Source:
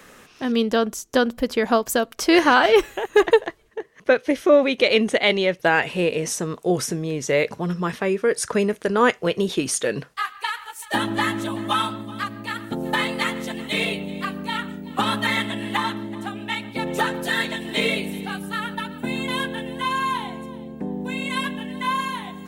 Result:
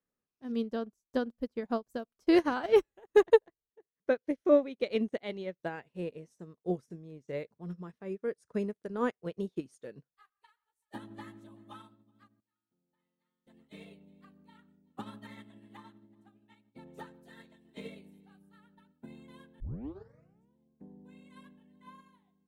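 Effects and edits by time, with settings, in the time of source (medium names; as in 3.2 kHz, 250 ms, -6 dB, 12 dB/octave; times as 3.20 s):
12.40–13.47 s: feedback comb 180 Hz, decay 1.1 s, mix 90%
19.60 s: tape start 0.96 s
whole clip: FFT filter 200 Hz 0 dB, 3 kHz -13 dB, 4.3 kHz -10 dB; upward expansion 2.5:1, over -40 dBFS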